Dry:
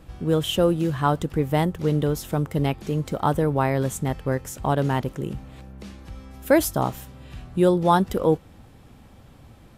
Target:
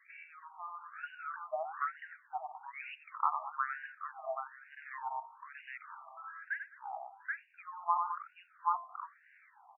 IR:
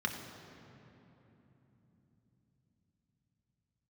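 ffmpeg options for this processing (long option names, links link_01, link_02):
-filter_complex "[0:a]afftfilt=real='re*pow(10,18/40*sin(2*PI*(0.74*log(max(b,1)*sr/1024/100)/log(2)-(0.42)*(pts-256)/sr)))':imag='im*pow(10,18/40*sin(2*PI*(0.74*log(max(b,1)*sr/1024/100)/log(2)-(0.42)*(pts-256)/sr)))':win_size=1024:overlap=0.75,bandreject=frequency=5700:width=6.5,asplit=2[link_01][link_02];[link_02]aecho=0:1:91|145|206|779:0.501|0.141|0.2|0.422[link_03];[link_01][link_03]amix=inputs=2:normalize=0,aexciter=amount=15.2:drive=4.6:freq=8800,acompressor=threshold=-27dB:ratio=12,bandreject=frequency=115.5:width_type=h:width=4,bandreject=frequency=231:width_type=h:width=4,bandreject=frequency=346.5:width_type=h:width=4,bandreject=frequency=462:width_type=h:width=4,bandreject=frequency=577.5:width_type=h:width=4,bandreject=frequency=693:width_type=h:width=4,bandreject=frequency=808.5:width_type=h:width=4,bandreject=frequency=924:width_type=h:width=4,bandreject=frequency=1039.5:width_type=h:width=4,bandreject=frequency=1155:width_type=h:width=4,bandreject=frequency=1270.5:width_type=h:width=4,adynamicequalizer=threshold=0.00355:dfrequency=110:dqfactor=2:tfrequency=110:tqfactor=2:attack=5:release=100:ratio=0.375:range=1.5:mode=cutabove:tftype=bell,acrusher=bits=9:mode=log:mix=0:aa=0.000001,acontrast=80,agate=range=-6dB:threshold=-30dB:ratio=16:detection=peak,afftfilt=real='re*between(b*sr/1024,880*pow(2100/880,0.5+0.5*sin(2*PI*1.1*pts/sr))/1.41,880*pow(2100/880,0.5+0.5*sin(2*PI*1.1*pts/sr))*1.41)':imag='im*between(b*sr/1024,880*pow(2100/880,0.5+0.5*sin(2*PI*1.1*pts/sr))/1.41,880*pow(2100/880,0.5+0.5*sin(2*PI*1.1*pts/sr))*1.41)':win_size=1024:overlap=0.75,volume=-3dB"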